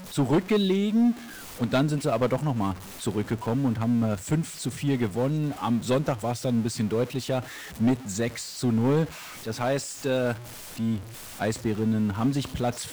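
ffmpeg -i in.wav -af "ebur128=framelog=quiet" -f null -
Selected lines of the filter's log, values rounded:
Integrated loudness:
  I:         -26.8 LUFS
  Threshold: -36.9 LUFS
Loudness range:
  LRA:         2.3 LU
  Threshold: -47.2 LUFS
  LRA low:   -28.3 LUFS
  LRA high:  -26.1 LUFS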